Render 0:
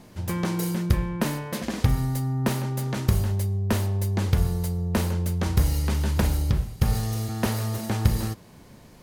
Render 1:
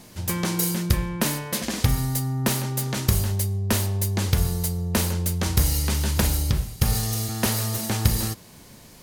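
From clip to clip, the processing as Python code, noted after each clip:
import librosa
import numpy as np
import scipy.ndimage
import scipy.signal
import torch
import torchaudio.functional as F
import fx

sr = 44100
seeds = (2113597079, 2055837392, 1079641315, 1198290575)

y = fx.high_shelf(x, sr, hz=2800.0, db=11.0)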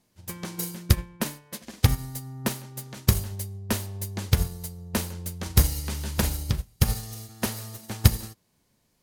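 y = fx.upward_expand(x, sr, threshold_db=-32.0, expansion=2.5)
y = F.gain(torch.from_numpy(y), 4.0).numpy()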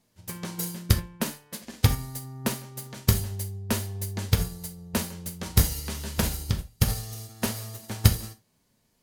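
y = fx.rev_gated(x, sr, seeds[0], gate_ms=100, shape='falling', drr_db=6.5)
y = F.gain(torch.from_numpy(y), -1.0).numpy()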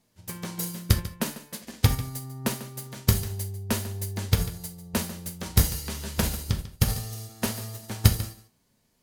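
y = x + 10.0 ** (-15.0 / 20.0) * np.pad(x, (int(145 * sr / 1000.0), 0))[:len(x)]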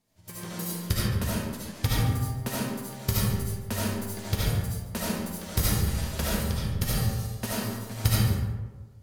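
y = fx.rev_freeverb(x, sr, rt60_s=1.3, hf_ratio=0.45, predelay_ms=35, drr_db=-7.5)
y = F.gain(torch.from_numpy(y), -7.0).numpy()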